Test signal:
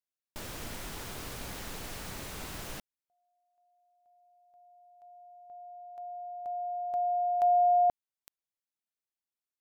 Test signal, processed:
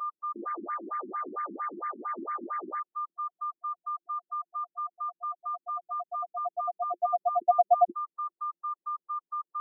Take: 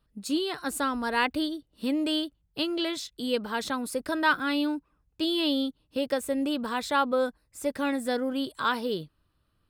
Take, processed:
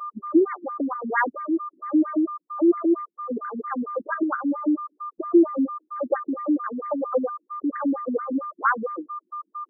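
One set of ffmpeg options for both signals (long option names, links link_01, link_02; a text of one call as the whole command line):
ffmpeg -i in.wav -af "aeval=exprs='val(0)+0.0158*sin(2*PI*1200*n/s)':channel_layout=same,equalizer=frequency=350:width=5.4:gain=10,afftfilt=real='re*between(b*sr/1024,250*pow(1600/250,0.5+0.5*sin(2*PI*4.4*pts/sr))/1.41,250*pow(1600/250,0.5+0.5*sin(2*PI*4.4*pts/sr))*1.41)':imag='im*between(b*sr/1024,250*pow(1600/250,0.5+0.5*sin(2*PI*4.4*pts/sr))/1.41,250*pow(1600/250,0.5+0.5*sin(2*PI*4.4*pts/sr))*1.41)':win_size=1024:overlap=0.75,volume=7dB" out.wav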